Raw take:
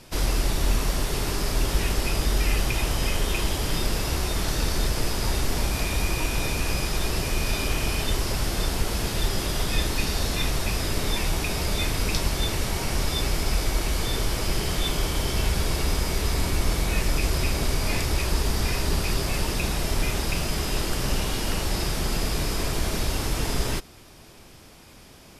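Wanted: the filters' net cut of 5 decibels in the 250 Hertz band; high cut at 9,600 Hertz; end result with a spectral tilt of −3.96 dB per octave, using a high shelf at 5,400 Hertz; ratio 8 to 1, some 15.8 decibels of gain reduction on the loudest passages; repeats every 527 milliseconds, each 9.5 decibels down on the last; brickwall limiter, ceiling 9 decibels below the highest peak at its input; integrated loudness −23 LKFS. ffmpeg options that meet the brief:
ffmpeg -i in.wav -af "lowpass=9600,equalizer=frequency=250:width_type=o:gain=-7.5,highshelf=frequency=5400:gain=-7.5,acompressor=threshold=-36dB:ratio=8,alimiter=level_in=11.5dB:limit=-24dB:level=0:latency=1,volume=-11.5dB,aecho=1:1:527|1054|1581|2108:0.335|0.111|0.0365|0.012,volume=23dB" out.wav

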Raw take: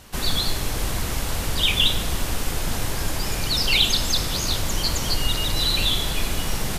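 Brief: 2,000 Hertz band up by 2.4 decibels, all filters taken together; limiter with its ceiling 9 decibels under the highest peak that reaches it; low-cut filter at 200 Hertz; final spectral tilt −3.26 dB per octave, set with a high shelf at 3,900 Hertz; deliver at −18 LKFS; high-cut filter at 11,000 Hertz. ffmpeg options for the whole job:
ffmpeg -i in.wav -af "highpass=200,lowpass=11000,equalizer=frequency=2000:width_type=o:gain=5,highshelf=frequency=3900:gain=-5.5,volume=8.5dB,alimiter=limit=-8.5dB:level=0:latency=1" out.wav

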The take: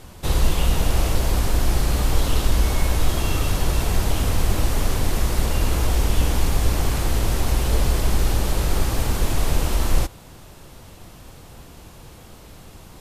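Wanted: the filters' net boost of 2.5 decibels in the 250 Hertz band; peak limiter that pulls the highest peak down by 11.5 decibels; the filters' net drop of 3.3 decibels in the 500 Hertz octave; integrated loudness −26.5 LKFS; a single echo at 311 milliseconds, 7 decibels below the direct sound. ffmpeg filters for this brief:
ffmpeg -i in.wav -af "equalizer=frequency=250:width_type=o:gain=5,equalizer=frequency=500:width_type=o:gain=-6,alimiter=limit=-17dB:level=0:latency=1,aecho=1:1:311:0.447,volume=1dB" out.wav

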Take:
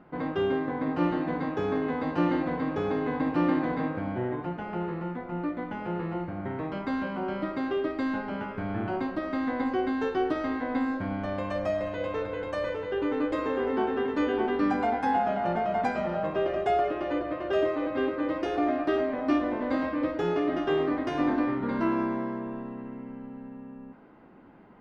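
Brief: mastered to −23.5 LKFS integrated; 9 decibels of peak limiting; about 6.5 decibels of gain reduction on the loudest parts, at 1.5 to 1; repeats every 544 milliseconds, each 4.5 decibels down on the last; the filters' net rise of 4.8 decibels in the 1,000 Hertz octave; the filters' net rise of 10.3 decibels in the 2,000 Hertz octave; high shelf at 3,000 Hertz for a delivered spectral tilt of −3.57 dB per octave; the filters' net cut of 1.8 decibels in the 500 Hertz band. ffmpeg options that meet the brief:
ffmpeg -i in.wav -af "equalizer=frequency=500:width_type=o:gain=-5,equalizer=frequency=1000:width_type=o:gain=5.5,equalizer=frequency=2000:width_type=o:gain=9,highshelf=frequency=3000:gain=7.5,acompressor=threshold=-37dB:ratio=1.5,alimiter=level_in=1.5dB:limit=-24dB:level=0:latency=1,volume=-1.5dB,aecho=1:1:544|1088|1632|2176|2720|3264|3808|4352|4896:0.596|0.357|0.214|0.129|0.0772|0.0463|0.0278|0.0167|0.01,volume=9dB" out.wav

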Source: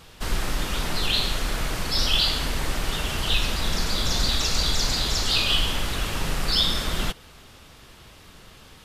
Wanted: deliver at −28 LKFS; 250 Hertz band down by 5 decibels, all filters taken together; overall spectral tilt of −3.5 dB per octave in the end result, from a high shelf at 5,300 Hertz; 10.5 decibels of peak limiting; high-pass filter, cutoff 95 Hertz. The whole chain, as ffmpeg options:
ffmpeg -i in.wav -af "highpass=95,equalizer=frequency=250:width_type=o:gain=-7,highshelf=frequency=5300:gain=-5.5,volume=1dB,alimiter=limit=-19.5dB:level=0:latency=1" out.wav

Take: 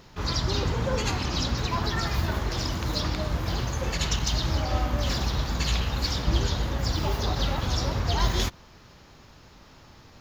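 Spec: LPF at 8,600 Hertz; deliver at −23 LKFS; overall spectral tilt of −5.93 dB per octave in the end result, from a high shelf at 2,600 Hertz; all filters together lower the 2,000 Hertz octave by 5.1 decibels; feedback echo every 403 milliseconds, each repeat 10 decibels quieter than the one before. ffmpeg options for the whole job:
ffmpeg -i in.wav -af "lowpass=8600,equalizer=frequency=2000:width_type=o:gain=-3,highshelf=frequency=2600:gain=-8,aecho=1:1:403|806|1209|1612:0.316|0.101|0.0324|0.0104,volume=5.5dB" out.wav

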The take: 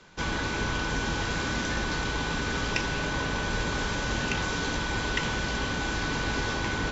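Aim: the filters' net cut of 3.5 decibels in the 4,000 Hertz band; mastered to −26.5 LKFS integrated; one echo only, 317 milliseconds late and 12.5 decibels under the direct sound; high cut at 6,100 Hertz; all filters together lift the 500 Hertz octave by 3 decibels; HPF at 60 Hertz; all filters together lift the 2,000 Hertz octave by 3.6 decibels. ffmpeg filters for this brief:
ffmpeg -i in.wav -af "highpass=60,lowpass=6100,equalizer=frequency=500:width_type=o:gain=3.5,equalizer=frequency=2000:width_type=o:gain=6.5,equalizer=frequency=4000:width_type=o:gain=-6.5,aecho=1:1:317:0.237,volume=0.5dB" out.wav

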